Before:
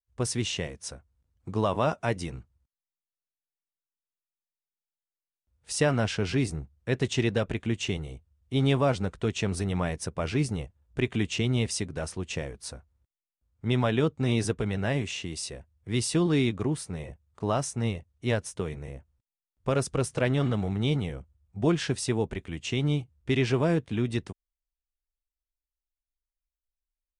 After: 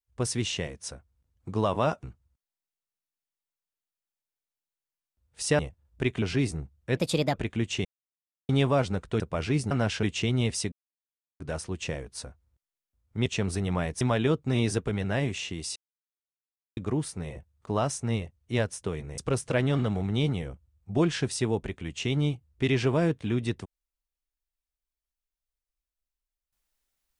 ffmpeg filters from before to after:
-filter_complex "[0:a]asplit=17[s0][s1][s2][s3][s4][s5][s6][s7][s8][s9][s10][s11][s12][s13][s14][s15][s16];[s0]atrim=end=2.032[s17];[s1]atrim=start=2.328:end=5.892[s18];[s2]atrim=start=10.558:end=11.192[s19];[s3]atrim=start=6.208:end=6.964[s20];[s4]atrim=start=6.96:end=7.44,asetpts=PTS-STARTPTS,asetrate=57330,aresample=44100,atrim=end_sample=16283,asetpts=PTS-STARTPTS[s21];[s5]atrim=start=7.436:end=7.95,asetpts=PTS-STARTPTS,afade=t=out:st=0.51:d=0.004:c=hsin[s22];[s6]atrim=start=7.95:end=8.59,asetpts=PTS-STARTPTS,volume=0[s23];[s7]atrim=start=8.59:end=9.302,asetpts=PTS-STARTPTS,afade=t=in:d=0.004:c=hsin[s24];[s8]atrim=start=10.048:end=10.562[s25];[s9]atrim=start=5.888:end=6.212[s26];[s10]atrim=start=11.188:end=11.88,asetpts=PTS-STARTPTS,afade=t=out:st=0.688:d=0.004:c=hsin,apad=pad_dur=0.68[s27];[s11]atrim=start=11.88:end=13.742,asetpts=PTS-STARTPTS,afade=t=in:d=0.004:c=hsin[s28];[s12]atrim=start=9.298:end=10.052[s29];[s13]atrim=start=13.738:end=15.49,asetpts=PTS-STARTPTS,afade=t=out:st=1.748:d=0.004:c=hsin[s30];[s14]atrim=start=15.49:end=16.5,asetpts=PTS-STARTPTS,volume=0[s31];[s15]atrim=start=16.5:end=18.912,asetpts=PTS-STARTPTS,afade=t=in:d=0.004:c=hsin[s32];[s16]atrim=start=19.848[s33];[s17][s18]acrossfade=d=0.004:c1=hsin:c2=hsin[s34];[s34][s19]acrossfade=d=0.004:c1=hsin:c2=hsin[s35];[s35][s20]acrossfade=d=0.004:c1=hsin:c2=hsin[s36];[s36][s21]acrossfade=d=0.004:c1=hsin:c2=hsin[s37];[s22][s23][s24]concat=n=3:v=0:a=1[s38];[s37][s38]acrossfade=d=0.004:c1=hsin:c2=hsin[s39];[s39][s25]acrossfade=d=0.004:c1=hsin:c2=hsin[s40];[s40][s26]acrossfade=d=0.004:c1=hsin:c2=hsin[s41];[s27][s28]concat=n=2:v=0:a=1[s42];[s41][s42]acrossfade=d=0.004:c1=hsin:c2=hsin[s43];[s43][s29]acrossfade=d=0.004:c1=hsin:c2=hsin[s44];[s30][s31][s32]concat=n=3:v=0:a=1[s45];[s44][s45]acrossfade=d=0.004:c1=hsin:c2=hsin[s46];[s46][s33]acrossfade=d=0.004:c1=hsin:c2=hsin"

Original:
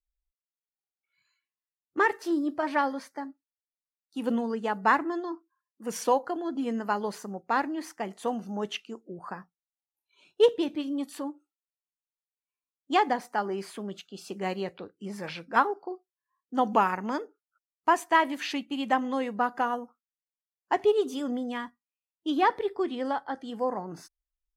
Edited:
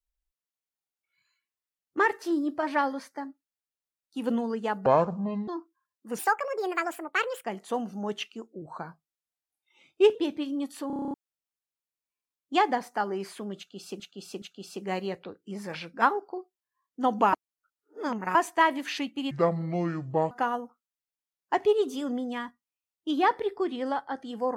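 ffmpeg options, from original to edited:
-filter_complex "[0:a]asplit=22[s0][s1][s2][s3][s4][s5][s6][s7][s8][s9][s10][s11][s12][s13][s14][s15][s16][s17][s18][s19][s20][s21];[s0]atrim=end=4.864[s22];[s1]atrim=start=4.86:end=5.23,asetpts=PTS-STARTPTS,asetrate=26460,aresample=44100[s23];[s2]atrim=start=5.226:end=5.944[s24];[s3]atrim=start=5.94:end=7.98,asetpts=PTS-STARTPTS,asetrate=71442,aresample=44100,atrim=end_sample=55533,asetpts=PTS-STARTPTS[s25];[s4]atrim=start=7.976:end=9.154[s26];[s5]atrim=start=9.15:end=10.53,asetpts=PTS-STARTPTS,asetrate=39690,aresample=44100[s27];[s6]atrim=start=10.526:end=11.282[s28];[s7]atrim=start=11.248:end=11.282[s29];[s8]atrim=start=11.248:end=11.282[s30];[s9]atrim=start=11.248:end=11.282[s31];[s10]atrim=start=11.248:end=11.282[s32];[s11]atrim=start=11.248:end=11.282[s33];[s12]atrim=start=11.248:end=11.282[s34];[s13]atrim=start=11.248:end=11.282[s35];[s14]atrim=start=11.248:end=11.282[s36];[s15]atrim=start=11.518:end=14.382[s37];[s16]atrim=start=13.958:end=14.382[s38];[s17]atrim=start=13.958:end=16.872[s39];[s18]atrim=start=16.868:end=17.892,asetpts=PTS-STARTPTS,areverse[s40];[s19]atrim=start=17.888:end=18.854[s41];[s20]atrim=start=18.85:end=19.5,asetpts=PTS-STARTPTS,asetrate=28665,aresample=44100[s42];[s21]atrim=start=19.496[s43];[s22][s23]acrossfade=d=0.004:c1=hsin:c2=hsin[s44];[s44][s24]acrossfade=d=0.004:c1=hsin:c2=hsin[s45];[s45][s25]acrossfade=d=0.004:c1=hsin:c2=hsin[s46];[s46][s26]acrossfade=d=0.004:c1=hsin:c2=hsin[s47];[s47][s27]acrossfade=d=0.004:c1=hsin:c2=hsin[s48];[s48][s28]acrossfade=d=0.004:c1=hsin:c2=hsin[s49];[s49][s29]acrossfade=d=0.004:c1=hsin:c2=hsin[s50];[s50][s30]acrossfade=d=0.004:c1=hsin:c2=hsin[s51];[s51][s31]acrossfade=d=0.004:c1=hsin:c2=hsin[s52];[s52][s32]acrossfade=d=0.004:c1=hsin:c2=hsin[s53];[s53][s33]acrossfade=d=0.004:c1=hsin:c2=hsin[s54];[s54][s34]acrossfade=d=0.004:c1=hsin:c2=hsin[s55];[s55][s35]acrossfade=d=0.004:c1=hsin:c2=hsin[s56];[s56][s36]acrossfade=d=0.004:c1=hsin:c2=hsin[s57];[s57][s37]acrossfade=d=0.004:c1=hsin:c2=hsin[s58];[s58][s38]acrossfade=d=0.004:c1=hsin:c2=hsin[s59];[s59][s39]acrossfade=d=0.004:c1=hsin:c2=hsin[s60];[s60][s40]acrossfade=d=0.004:c1=hsin:c2=hsin[s61];[s61][s41]acrossfade=d=0.004:c1=hsin:c2=hsin[s62];[s62][s42]acrossfade=d=0.004:c1=hsin:c2=hsin[s63];[s63][s43]acrossfade=d=0.004:c1=hsin:c2=hsin"

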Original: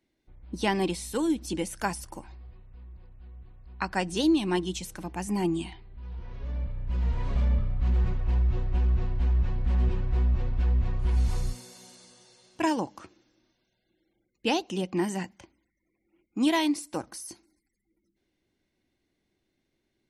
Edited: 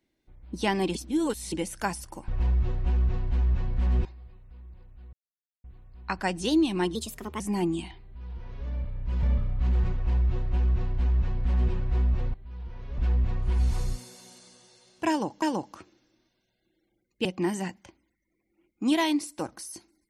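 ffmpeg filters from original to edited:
-filter_complex "[0:a]asplit=13[s0][s1][s2][s3][s4][s5][s6][s7][s8][s9][s10][s11][s12];[s0]atrim=end=0.952[s13];[s1]atrim=start=0.948:end=1.522,asetpts=PTS-STARTPTS,areverse[s14];[s2]atrim=start=1.518:end=2.282[s15];[s3]atrim=start=8.158:end=9.932[s16];[s4]atrim=start=2.278:end=3.36,asetpts=PTS-STARTPTS,afade=t=out:st=1.078:d=0.004:c=hsin,apad=pad_dur=0.51[s17];[s5]atrim=start=3.36:end=4.674,asetpts=PTS-STARTPTS,afade=t=in:d=0.004:c=hsin[s18];[s6]atrim=start=4.67:end=5.22,asetpts=PTS-STARTPTS,asetrate=53802,aresample=44100,atrim=end_sample=19881,asetpts=PTS-STARTPTS[s19];[s7]atrim=start=5.216:end=7.052[s20];[s8]atrim=start=7.438:end=10.552[s21];[s9]atrim=start=5.858:end=6.502[s22];[s10]atrim=start=10.548:end=12.992[s23];[s11]atrim=start=12.658:end=14.492[s24];[s12]atrim=start=14.798[s25];[s13][s14]acrossfade=d=0.004:c1=hsin:c2=hsin[s26];[s26][s15]acrossfade=d=0.004:c1=hsin:c2=hsin[s27];[s27][s16]acrossfade=d=0.004:c1=hsin:c2=hsin[s28];[s17][s18]concat=n=2:v=0:a=1[s29];[s28][s29]acrossfade=d=0.004:c1=hsin:c2=hsin[s30];[s30][s19]acrossfade=d=0.004:c1=hsin:c2=hsin[s31];[s31][s20]acrossfade=d=0.004:c1=hsin:c2=hsin[s32];[s32][s21]acrossfade=d=0.004:c1=hsin:c2=hsin[s33];[s33][s22]acrossfade=d=0.004:c1=hsin:c2=hsin[s34];[s34][s23]acrossfade=d=0.004:c1=hsin:c2=hsin[s35];[s35][s24]acrossfade=d=0.004:c1=hsin:c2=hsin[s36];[s36][s25]acrossfade=d=0.004:c1=hsin:c2=hsin"

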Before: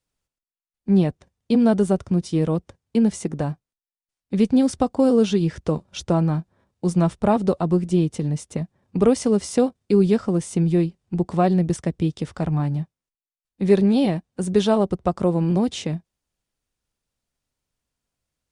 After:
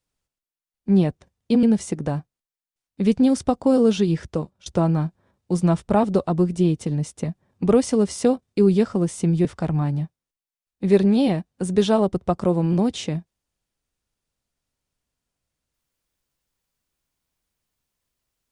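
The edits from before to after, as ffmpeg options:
-filter_complex "[0:a]asplit=4[s0][s1][s2][s3];[s0]atrim=end=1.632[s4];[s1]atrim=start=2.958:end=5.99,asetpts=PTS-STARTPTS,afade=t=out:st=2.612:d=0.42:silence=0.105925[s5];[s2]atrim=start=5.99:end=10.782,asetpts=PTS-STARTPTS,afade=t=in:d=0.004:c=hsin:silence=0.105925[s6];[s3]atrim=start=12.228[s7];[s5][s6]concat=n=2:v=0:a=1[s8];[s4][s8]acrossfade=d=0.004:c1=hsin:c2=hsin[s9];[s9][s7]acrossfade=d=0.004:c1=hsin:c2=hsin"

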